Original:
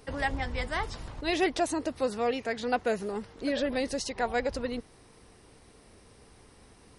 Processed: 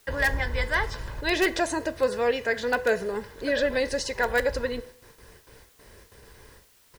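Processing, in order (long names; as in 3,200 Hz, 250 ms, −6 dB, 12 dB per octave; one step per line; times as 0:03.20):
low-pass filter 9,300 Hz
noise gate with hold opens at −45 dBFS
parametric band 1,700 Hz +12 dB 0.22 octaves
comb filter 2 ms, depth 45%
hum removal 166.7 Hz, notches 5
in parallel at −8 dB: wrap-around overflow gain 16.5 dB
on the sum: bit-depth reduction 10 bits, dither triangular
on a send at −14.5 dB: convolution reverb RT60 0.55 s, pre-delay 4 ms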